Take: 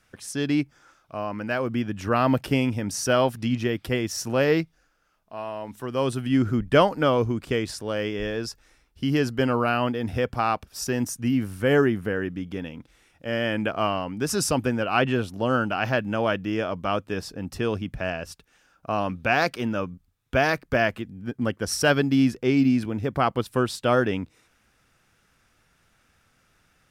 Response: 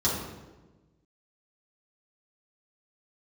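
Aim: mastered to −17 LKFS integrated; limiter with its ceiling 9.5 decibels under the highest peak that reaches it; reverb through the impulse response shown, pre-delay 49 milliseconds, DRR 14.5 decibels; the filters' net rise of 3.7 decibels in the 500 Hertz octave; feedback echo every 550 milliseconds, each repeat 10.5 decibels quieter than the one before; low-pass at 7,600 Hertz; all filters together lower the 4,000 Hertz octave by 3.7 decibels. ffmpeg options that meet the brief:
-filter_complex "[0:a]lowpass=7600,equalizer=frequency=500:width_type=o:gain=4.5,equalizer=frequency=4000:width_type=o:gain=-5.5,alimiter=limit=-13dB:level=0:latency=1,aecho=1:1:550|1100|1650:0.299|0.0896|0.0269,asplit=2[link_01][link_02];[1:a]atrim=start_sample=2205,adelay=49[link_03];[link_02][link_03]afir=irnorm=-1:irlink=0,volume=-25.5dB[link_04];[link_01][link_04]amix=inputs=2:normalize=0,volume=7.5dB"

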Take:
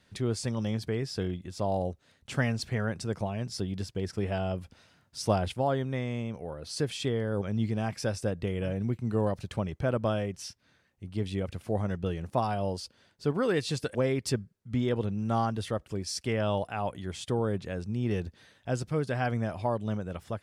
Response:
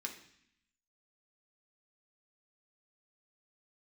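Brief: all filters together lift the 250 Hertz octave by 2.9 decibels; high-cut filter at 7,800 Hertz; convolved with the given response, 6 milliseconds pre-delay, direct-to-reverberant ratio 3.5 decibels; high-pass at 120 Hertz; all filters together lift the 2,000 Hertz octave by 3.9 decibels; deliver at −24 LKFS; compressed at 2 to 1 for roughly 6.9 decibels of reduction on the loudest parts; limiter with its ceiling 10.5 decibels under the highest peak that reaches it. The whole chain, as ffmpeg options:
-filter_complex "[0:a]highpass=120,lowpass=7800,equalizer=frequency=250:width_type=o:gain=4,equalizer=frequency=2000:width_type=o:gain=5,acompressor=threshold=-33dB:ratio=2,alimiter=level_in=3dB:limit=-24dB:level=0:latency=1,volume=-3dB,asplit=2[link_01][link_02];[1:a]atrim=start_sample=2205,adelay=6[link_03];[link_02][link_03]afir=irnorm=-1:irlink=0,volume=-2.5dB[link_04];[link_01][link_04]amix=inputs=2:normalize=0,volume=12.5dB"

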